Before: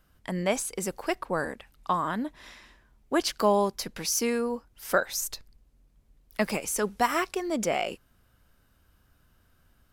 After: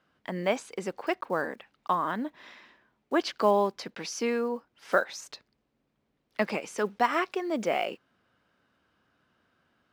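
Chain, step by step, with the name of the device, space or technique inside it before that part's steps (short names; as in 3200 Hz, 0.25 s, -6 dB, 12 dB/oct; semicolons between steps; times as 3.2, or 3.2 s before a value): early digital voice recorder (BPF 210–3700 Hz; block floating point 7-bit)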